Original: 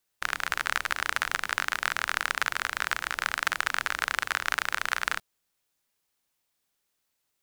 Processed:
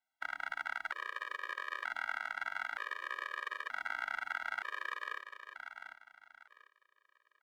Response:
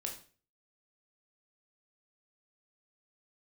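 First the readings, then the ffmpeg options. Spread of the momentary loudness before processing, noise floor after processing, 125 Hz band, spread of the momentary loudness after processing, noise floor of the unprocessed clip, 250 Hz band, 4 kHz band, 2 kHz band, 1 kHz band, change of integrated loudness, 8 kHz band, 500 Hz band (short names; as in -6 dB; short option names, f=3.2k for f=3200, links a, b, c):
2 LU, -82 dBFS, under -25 dB, 12 LU, -79 dBFS, under -15 dB, -16.5 dB, -10.0 dB, -9.5 dB, -11.0 dB, -26.0 dB, -10.5 dB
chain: -filter_complex "[0:a]acrossover=split=330 3100:gain=0.0794 1 0.112[a][b][c];[a][b][c]amix=inputs=3:normalize=0,bandreject=f=2.6k:w=6.9,alimiter=limit=-18dB:level=0:latency=1:release=289,asplit=2[d][e];[e]aecho=0:1:746|1492|2238:0.355|0.103|0.0298[f];[d][f]amix=inputs=2:normalize=0,afftfilt=real='re*gt(sin(2*PI*0.54*pts/sr)*(1-2*mod(floor(b*sr/1024/320),2)),0)':imag='im*gt(sin(2*PI*0.54*pts/sr)*(1-2*mod(floor(b*sr/1024/320),2)),0)':win_size=1024:overlap=0.75"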